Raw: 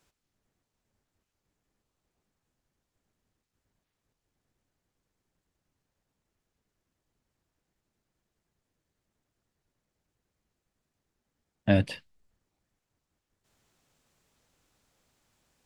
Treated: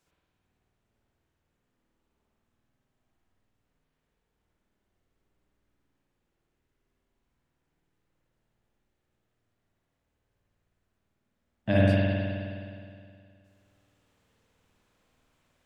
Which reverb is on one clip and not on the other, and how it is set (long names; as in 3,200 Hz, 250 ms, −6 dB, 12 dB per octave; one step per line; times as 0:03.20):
spring reverb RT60 2.3 s, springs 52 ms, chirp 55 ms, DRR −7 dB
level −4.5 dB